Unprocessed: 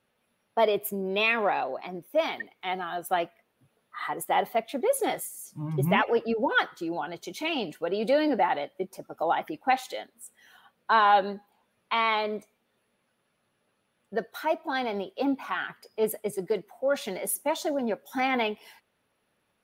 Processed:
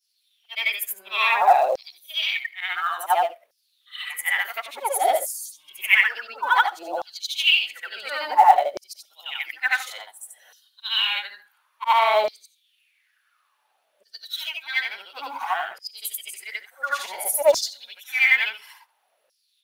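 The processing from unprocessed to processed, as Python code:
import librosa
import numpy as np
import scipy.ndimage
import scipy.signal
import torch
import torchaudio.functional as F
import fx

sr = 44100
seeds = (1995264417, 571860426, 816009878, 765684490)

p1 = fx.frame_reverse(x, sr, frame_ms=187.0)
p2 = fx.high_shelf(p1, sr, hz=2600.0, db=9.0)
p3 = fx.filter_lfo_highpass(p2, sr, shape='saw_down', hz=0.57, low_hz=540.0, high_hz=5400.0, q=6.8)
p4 = fx.quant_float(p3, sr, bits=2)
p5 = p3 + (p4 * librosa.db_to_amplitude(-10.0))
y = p5 * librosa.db_to_amplitude(-1.0)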